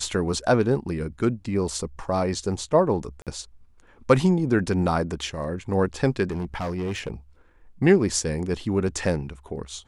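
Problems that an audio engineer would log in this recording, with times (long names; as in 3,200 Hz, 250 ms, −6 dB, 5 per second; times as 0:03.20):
0:03.22–0:03.27: drop-out 47 ms
0:06.30–0:07.10: clipping −24.5 dBFS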